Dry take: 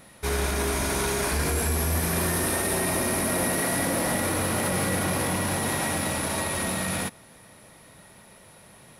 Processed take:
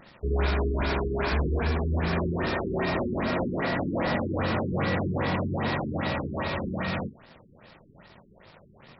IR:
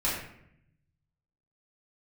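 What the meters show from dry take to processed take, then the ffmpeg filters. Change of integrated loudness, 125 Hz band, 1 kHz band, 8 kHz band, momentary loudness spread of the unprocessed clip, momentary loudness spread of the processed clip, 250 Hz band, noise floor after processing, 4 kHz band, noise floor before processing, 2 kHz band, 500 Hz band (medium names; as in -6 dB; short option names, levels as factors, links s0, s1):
-3.0 dB, +1.0 dB, -2.0 dB, under -40 dB, 3 LU, 4 LU, 0.0 dB, -55 dBFS, -6.0 dB, -52 dBFS, -3.0 dB, -0.5 dB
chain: -filter_complex "[0:a]acrusher=bits=7:mix=0:aa=0.000001,asplit=2[s0][s1];[1:a]atrim=start_sample=2205,afade=t=out:st=0.14:d=0.01,atrim=end_sample=6615,lowshelf=f=66:g=3.5[s2];[s1][s2]afir=irnorm=-1:irlink=0,volume=0.0668[s3];[s0][s3]amix=inputs=2:normalize=0,afftfilt=real='re*lt(b*sr/1024,410*pow(5700/410,0.5+0.5*sin(2*PI*2.5*pts/sr)))':imag='im*lt(b*sr/1024,410*pow(5700/410,0.5+0.5*sin(2*PI*2.5*pts/sr)))':win_size=1024:overlap=0.75"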